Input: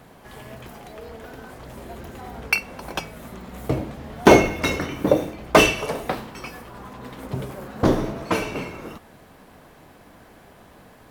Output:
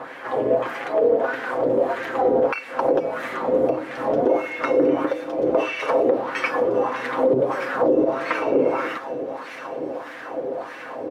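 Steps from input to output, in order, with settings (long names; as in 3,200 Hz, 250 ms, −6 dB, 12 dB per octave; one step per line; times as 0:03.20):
downward compressor 12 to 1, threshold −32 dBFS, peak gain reduction 25 dB
comb filter 7.5 ms, depth 52%
hollow resonant body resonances 320/490 Hz, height 14 dB, ringing for 55 ms
on a send: delay with a high-pass on its return 1,162 ms, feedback 62%, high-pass 4,200 Hz, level −4.5 dB
on the sum: auto-filter band-pass sine 1.6 Hz 440–1,900 Hz
boost into a limiter +28.5 dB
level −8.5 dB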